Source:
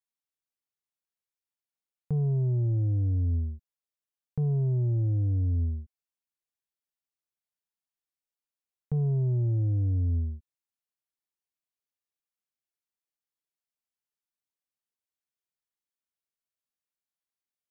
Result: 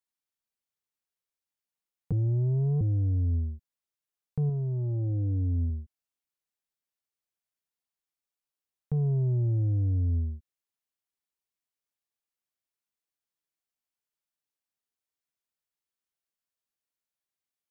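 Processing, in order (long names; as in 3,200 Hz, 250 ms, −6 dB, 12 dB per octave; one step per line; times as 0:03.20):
0:02.12–0:02.81: reverse
0:04.49–0:05.70: comb filter 3.8 ms, depth 37%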